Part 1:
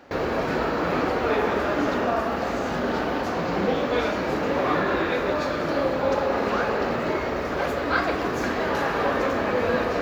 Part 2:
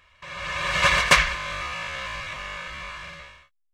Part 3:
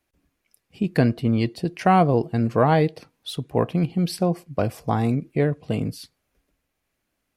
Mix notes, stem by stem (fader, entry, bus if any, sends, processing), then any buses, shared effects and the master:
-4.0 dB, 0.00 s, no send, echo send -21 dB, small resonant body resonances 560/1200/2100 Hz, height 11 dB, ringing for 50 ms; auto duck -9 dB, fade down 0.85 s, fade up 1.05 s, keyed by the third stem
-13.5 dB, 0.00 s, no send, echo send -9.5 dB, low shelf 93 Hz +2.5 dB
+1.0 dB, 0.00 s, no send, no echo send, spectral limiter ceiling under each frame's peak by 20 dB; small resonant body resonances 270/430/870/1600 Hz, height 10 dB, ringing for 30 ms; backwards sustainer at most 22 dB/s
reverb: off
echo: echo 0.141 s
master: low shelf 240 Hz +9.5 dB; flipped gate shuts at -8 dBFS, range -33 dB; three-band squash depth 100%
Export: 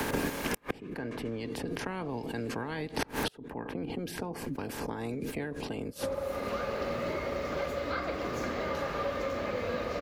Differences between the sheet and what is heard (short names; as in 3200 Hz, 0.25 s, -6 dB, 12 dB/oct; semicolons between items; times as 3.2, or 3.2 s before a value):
stem 1 -4.0 dB -> -15.5 dB; stem 2 -13.5 dB -> -7.0 dB